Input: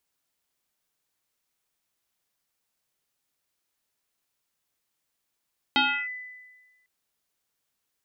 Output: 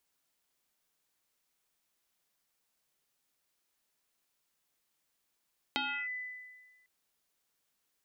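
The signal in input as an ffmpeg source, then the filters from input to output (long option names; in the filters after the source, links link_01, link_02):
-f lavfi -i "aevalsrc='0.141*pow(10,-3*t/1.34)*sin(2*PI*2000*t+3.1*clip(1-t/0.32,0,1)*sin(2*PI*0.29*2000*t))':duration=1.1:sample_rate=44100"
-af "equalizer=frequency=99:width_type=o:width=0.27:gain=-14,acompressor=threshold=-35dB:ratio=5"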